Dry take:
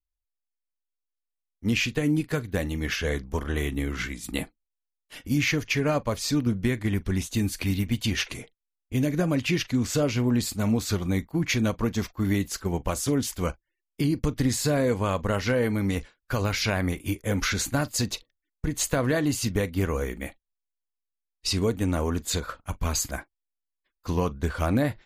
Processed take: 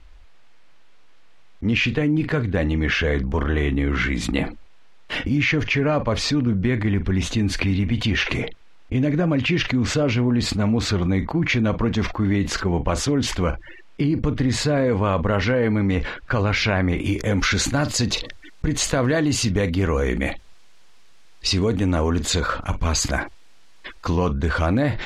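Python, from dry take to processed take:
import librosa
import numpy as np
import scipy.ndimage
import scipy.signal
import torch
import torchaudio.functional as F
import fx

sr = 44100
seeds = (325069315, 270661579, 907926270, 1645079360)

y = fx.lowpass(x, sr, hz=fx.steps((0.0, 2900.0), (17.04, 5100.0)), slope=12)
y = fx.env_flatten(y, sr, amount_pct=70)
y = y * 10.0 ** (2.0 / 20.0)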